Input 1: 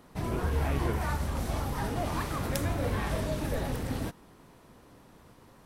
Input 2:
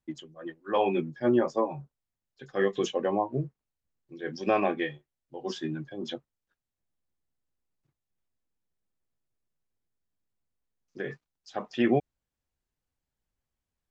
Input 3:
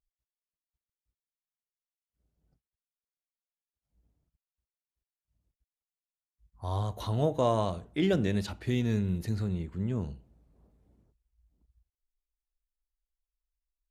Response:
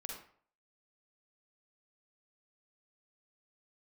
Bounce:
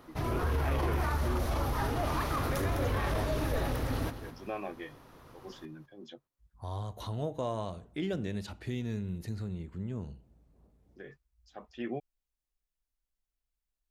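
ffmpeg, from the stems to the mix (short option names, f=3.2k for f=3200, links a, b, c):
-filter_complex "[0:a]equalizer=f=200:t=o:w=0.33:g=-9,equalizer=f=1.25k:t=o:w=0.33:g=4,equalizer=f=8k:t=o:w=0.33:g=-10,volume=1dB,asplit=2[a][b];[b]volume=-12dB[c];[1:a]volume=-13dB[d];[2:a]acompressor=threshold=-44dB:ratio=1.5,volume=0dB[e];[c]aecho=0:1:207|414|621|828:1|0.31|0.0961|0.0298[f];[a][d][e][f]amix=inputs=4:normalize=0,alimiter=limit=-22.5dB:level=0:latency=1:release=10"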